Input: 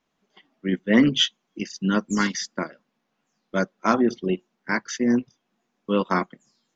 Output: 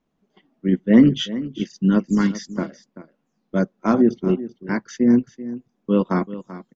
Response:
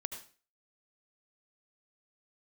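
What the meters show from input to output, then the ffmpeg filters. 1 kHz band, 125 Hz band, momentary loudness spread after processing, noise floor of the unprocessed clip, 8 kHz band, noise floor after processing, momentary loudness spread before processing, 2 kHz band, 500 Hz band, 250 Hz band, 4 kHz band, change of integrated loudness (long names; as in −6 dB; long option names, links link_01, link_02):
−3.0 dB, +6.5 dB, 16 LU, −77 dBFS, can't be measured, −73 dBFS, 14 LU, −5.0 dB, +3.0 dB, +5.5 dB, −6.5 dB, +3.5 dB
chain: -af "tiltshelf=frequency=660:gain=7.5,aecho=1:1:386:0.178"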